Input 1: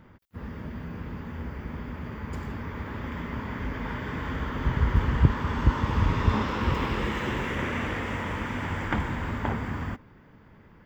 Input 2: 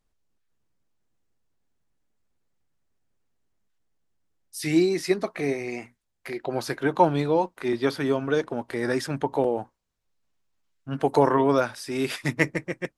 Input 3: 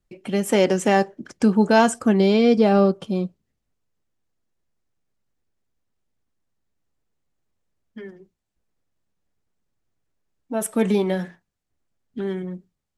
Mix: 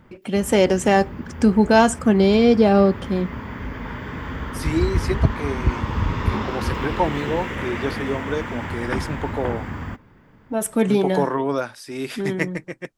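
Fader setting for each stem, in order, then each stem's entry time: +1.5, −2.0, +1.5 decibels; 0.00, 0.00, 0.00 seconds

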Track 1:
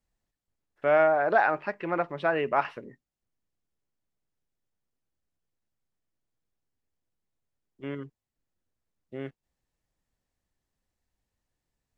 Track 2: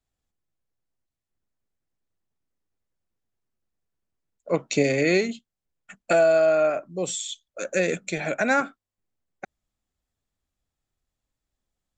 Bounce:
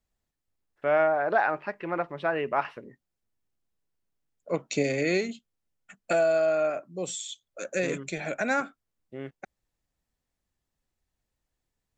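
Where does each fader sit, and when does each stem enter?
−1.5, −5.0 decibels; 0.00, 0.00 seconds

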